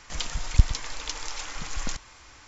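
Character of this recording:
background noise floor −51 dBFS
spectral slope −3.0 dB per octave

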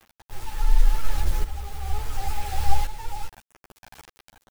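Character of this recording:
a quantiser's noise floor 6 bits, dither none
tremolo saw up 0.7 Hz, depth 75%
a shimmering, thickened sound

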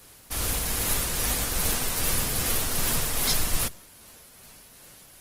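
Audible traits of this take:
tremolo triangle 2.5 Hz, depth 35%
Opus

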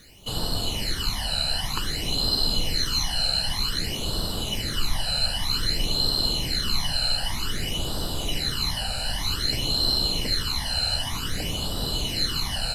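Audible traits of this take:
a quantiser's noise floor 10 bits, dither none
phaser sweep stages 12, 0.53 Hz, lowest notch 340–2,200 Hz
SBC

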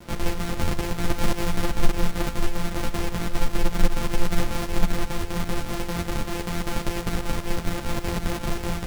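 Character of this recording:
a buzz of ramps at a fixed pitch in blocks of 256 samples
chopped level 5.1 Hz, depth 60%, duty 70%
a quantiser's noise floor 8 bits, dither none
a shimmering, thickened sound

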